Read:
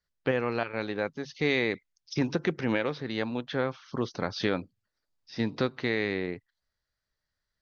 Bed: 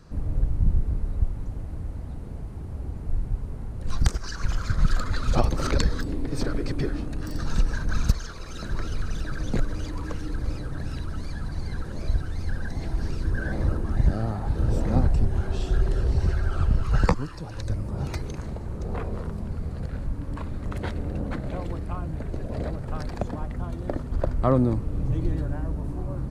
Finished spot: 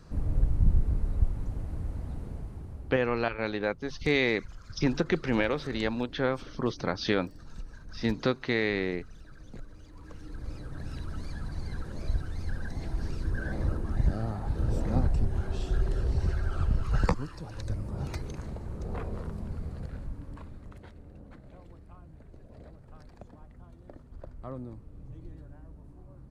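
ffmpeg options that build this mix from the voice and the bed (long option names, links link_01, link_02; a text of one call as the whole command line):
ffmpeg -i stem1.wav -i stem2.wav -filter_complex "[0:a]adelay=2650,volume=1dB[link_01];[1:a]volume=13dB,afade=type=out:start_time=2.2:duration=0.95:silence=0.125893,afade=type=in:start_time=9.88:duration=1.26:silence=0.188365,afade=type=out:start_time=19.54:duration=1.33:silence=0.188365[link_02];[link_01][link_02]amix=inputs=2:normalize=0" out.wav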